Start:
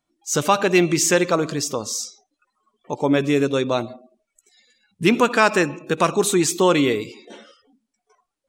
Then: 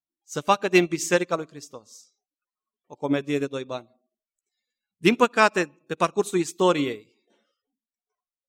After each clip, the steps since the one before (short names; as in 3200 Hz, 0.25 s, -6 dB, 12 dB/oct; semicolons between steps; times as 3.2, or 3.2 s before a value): upward expander 2.5:1, over -29 dBFS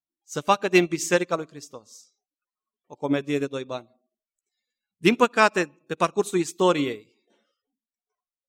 nothing audible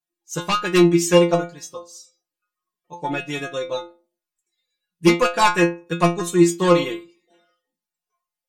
sine folder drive 7 dB, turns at -4 dBFS; metallic resonator 170 Hz, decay 0.32 s, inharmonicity 0.002; small resonant body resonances 1100/1700/2700 Hz, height 9 dB, ringing for 0.1 s; gain +7 dB